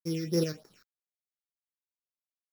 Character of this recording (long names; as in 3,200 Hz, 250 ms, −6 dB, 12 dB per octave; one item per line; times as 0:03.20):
a buzz of ramps at a fixed pitch in blocks of 8 samples
tremolo saw up 2.3 Hz, depth 50%
a quantiser's noise floor 10 bits, dither none
phaser sweep stages 6, 3.4 Hz, lowest notch 780–3,000 Hz